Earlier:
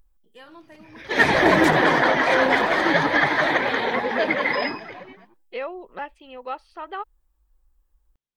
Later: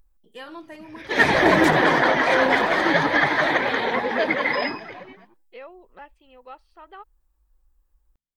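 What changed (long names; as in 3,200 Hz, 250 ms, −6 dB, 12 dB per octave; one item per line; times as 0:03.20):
first voice +7.0 dB
second voice −10.5 dB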